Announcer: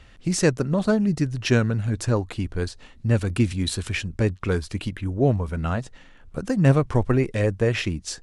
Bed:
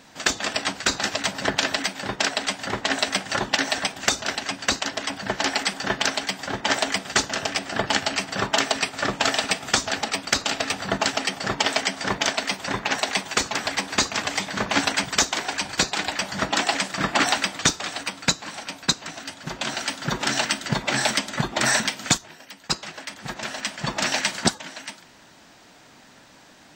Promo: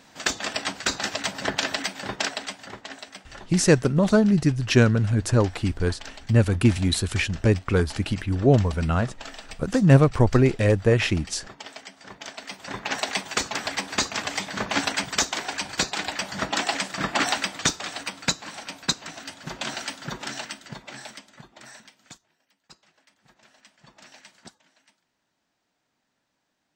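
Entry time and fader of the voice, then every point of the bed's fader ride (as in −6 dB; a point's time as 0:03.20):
3.25 s, +2.5 dB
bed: 0:02.19 −3 dB
0:03.07 −18.5 dB
0:12.11 −18.5 dB
0:12.97 −3 dB
0:19.69 −3 dB
0:21.73 −26 dB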